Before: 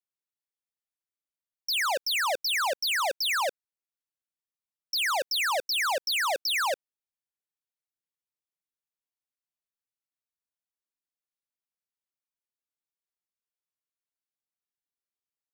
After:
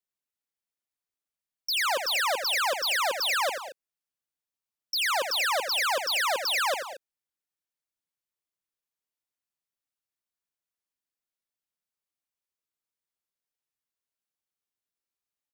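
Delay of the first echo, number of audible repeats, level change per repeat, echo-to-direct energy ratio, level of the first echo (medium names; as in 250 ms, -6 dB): 85 ms, 3, no regular repeats, -6.5 dB, -8.0 dB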